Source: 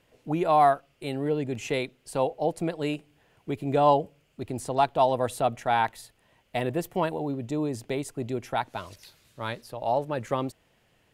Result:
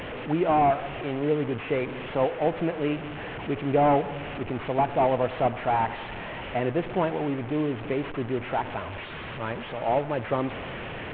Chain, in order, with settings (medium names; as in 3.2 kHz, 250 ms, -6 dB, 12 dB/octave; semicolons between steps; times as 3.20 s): one-bit delta coder 16 kbps, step -30.5 dBFS; peaking EQ 400 Hz +2.5 dB 2.2 oct; reverberation RT60 2.2 s, pre-delay 61 ms, DRR 16 dB